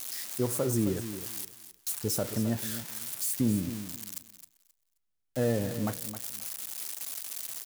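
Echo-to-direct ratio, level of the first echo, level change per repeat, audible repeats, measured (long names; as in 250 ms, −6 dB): −11.5 dB, −11.5 dB, −14.0 dB, 2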